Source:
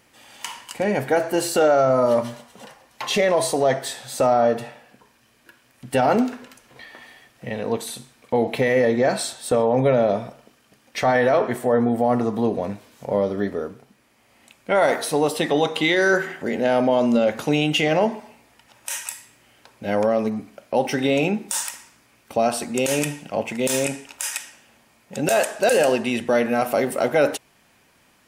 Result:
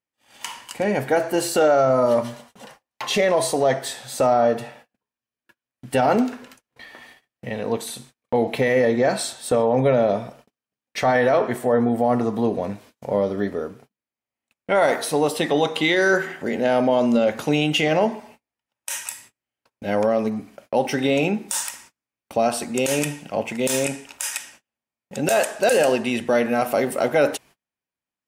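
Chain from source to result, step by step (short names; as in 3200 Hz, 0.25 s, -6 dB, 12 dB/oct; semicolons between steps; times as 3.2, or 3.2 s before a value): gate -46 dBFS, range -34 dB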